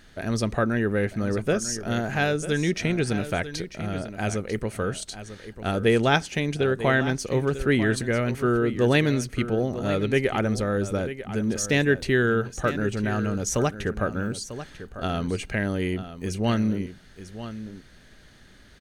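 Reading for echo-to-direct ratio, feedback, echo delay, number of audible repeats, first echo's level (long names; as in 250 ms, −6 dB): −12.5 dB, repeats not evenly spaced, 945 ms, 1, −12.5 dB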